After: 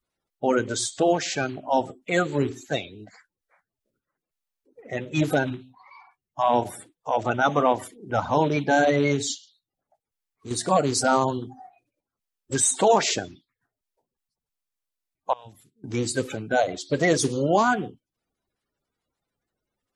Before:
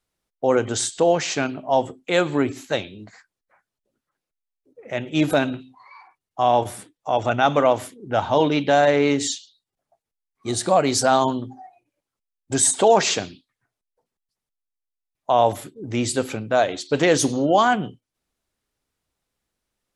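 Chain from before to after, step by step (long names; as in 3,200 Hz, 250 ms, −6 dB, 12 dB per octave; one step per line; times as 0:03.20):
spectral magnitudes quantised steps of 30 dB
0:09.34–0:10.51: downward compressor 2 to 1, threshold −39 dBFS, peak gain reduction 9 dB
0:15.33–0:15.84: guitar amp tone stack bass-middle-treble 6-0-2
level −2.5 dB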